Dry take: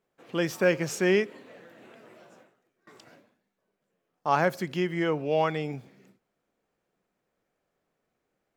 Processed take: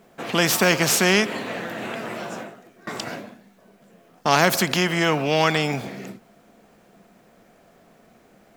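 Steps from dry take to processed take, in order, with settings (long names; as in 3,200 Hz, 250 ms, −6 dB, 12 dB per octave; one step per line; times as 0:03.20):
hollow resonant body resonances 210/680 Hz, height 8 dB
every bin compressed towards the loudest bin 2 to 1
level +6.5 dB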